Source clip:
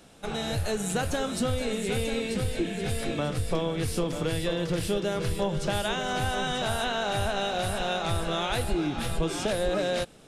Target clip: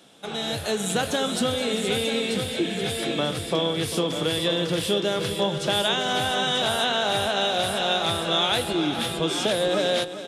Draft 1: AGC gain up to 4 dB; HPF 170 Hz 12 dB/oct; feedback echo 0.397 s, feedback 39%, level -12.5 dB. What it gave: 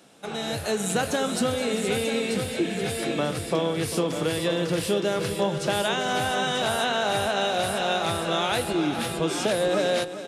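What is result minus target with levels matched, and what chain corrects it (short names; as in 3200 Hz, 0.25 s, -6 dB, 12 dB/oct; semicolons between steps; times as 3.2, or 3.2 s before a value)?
4000 Hz band -4.5 dB
AGC gain up to 4 dB; HPF 170 Hz 12 dB/oct; bell 3400 Hz +9.5 dB 0.29 oct; feedback echo 0.397 s, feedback 39%, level -12.5 dB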